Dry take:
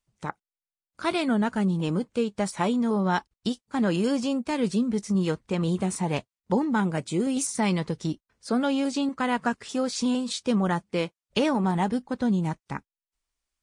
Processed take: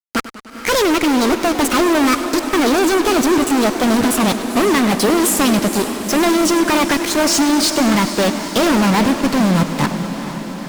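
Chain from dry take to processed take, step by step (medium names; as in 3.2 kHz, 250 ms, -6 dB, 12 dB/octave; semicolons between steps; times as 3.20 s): gliding tape speed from 154% -> 101%; low-pass 9.1 kHz; bass shelf 73 Hz -6.5 dB; fuzz box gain 43 dB, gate -42 dBFS; echo that smears into a reverb 461 ms, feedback 68%, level -11 dB; modulated delay 100 ms, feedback 71%, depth 123 cents, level -15 dB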